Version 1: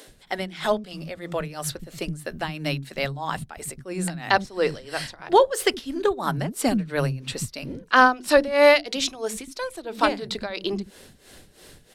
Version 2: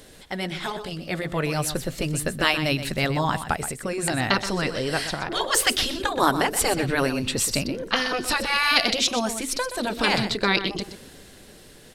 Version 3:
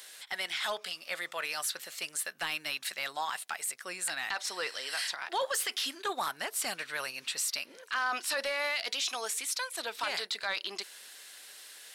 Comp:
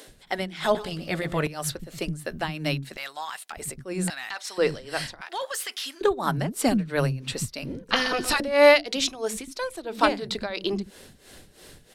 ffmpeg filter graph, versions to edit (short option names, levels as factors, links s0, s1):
-filter_complex "[1:a]asplit=2[s0][s1];[2:a]asplit=3[s2][s3][s4];[0:a]asplit=6[s5][s6][s7][s8][s9][s10];[s5]atrim=end=0.752[s11];[s0]atrim=start=0.748:end=1.472[s12];[s6]atrim=start=1.468:end=2.972[s13];[s2]atrim=start=2.968:end=3.522[s14];[s7]atrim=start=3.518:end=4.102[s15];[s3]atrim=start=4.098:end=4.582[s16];[s8]atrim=start=4.578:end=5.212[s17];[s4]atrim=start=5.208:end=6.012[s18];[s9]atrim=start=6.008:end=7.892[s19];[s1]atrim=start=7.888:end=8.402[s20];[s10]atrim=start=8.398[s21];[s11][s12]acrossfade=d=0.004:c1=hsin:c2=hsin[s22];[s22][s13]acrossfade=d=0.004:c1=hsin:c2=hsin[s23];[s23][s14]acrossfade=d=0.004:c1=hsin:c2=hsin[s24];[s24][s15]acrossfade=d=0.004:c1=hsin:c2=hsin[s25];[s25][s16]acrossfade=d=0.004:c1=hsin:c2=hsin[s26];[s26][s17]acrossfade=d=0.004:c1=hsin:c2=hsin[s27];[s27][s18]acrossfade=d=0.004:c1=hsin:c2=hsin[s28];[s28][s19]acrossfade=d=0.004:c1=hsin:c2=hsin[s29];[s29][s20]acrossfade=d=0.004:c1=hsin:c2=hsin[s30];[s30][s21]acrossfade=d=0.004:c1=hsin:c2=hsin"